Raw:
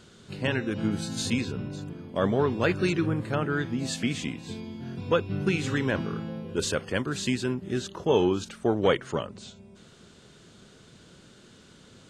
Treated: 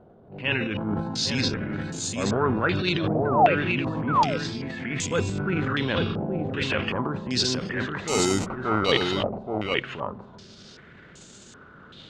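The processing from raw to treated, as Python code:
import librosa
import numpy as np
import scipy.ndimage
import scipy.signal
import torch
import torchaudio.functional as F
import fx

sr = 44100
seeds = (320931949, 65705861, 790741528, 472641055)

p1 = fx.transient(x, sr, attack_db=-8, sustain_db=9)
p2 = fx.rider(p1, sr, range_db=10, speed_s=2.0)
p3 = p1 + (p2 * librosa.db_to_amplitude(1.0))
p4 = fx.spec_paint(p3, sr, seeds[0], shape='fall', start_s=3.25, length_s=0.3, low_hz=470.0, high_hz=1600.0, level_db=-17.0)
p5 = fx.sample_hold(p4, sr, seeds[1], rate_hz=1700.0, jitter_pct=0, at=(8.04, 8.92))
p6 = p5 + fx.echo_single(p5, sr, ms=825, db=-4.5, dry=0)
p7 = fx.filter_held_lowpass(p6, sr, hz=2.6, low_hz=710.0, high_hz=7200.0)
y = p7 * librosa.db_to_amplitude(-7.5)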